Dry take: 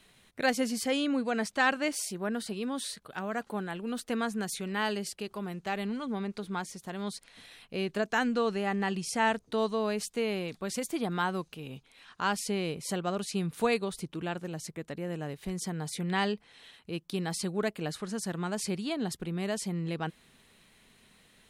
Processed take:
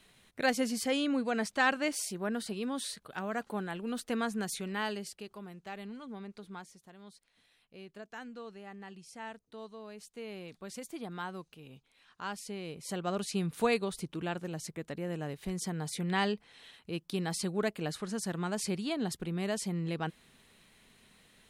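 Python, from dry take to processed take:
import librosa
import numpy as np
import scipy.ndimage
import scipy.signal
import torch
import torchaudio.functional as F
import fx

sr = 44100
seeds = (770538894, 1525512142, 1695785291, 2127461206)

y = fx.gain(x, sr, db=fx.line((4.56, -1.5), (5.53, -10.0), (6.52, -10.0), (6.99, -17.0), (9.87, -17.0), (10.5, -9.5), (12.61, -9.5), (13.15, -1.0)))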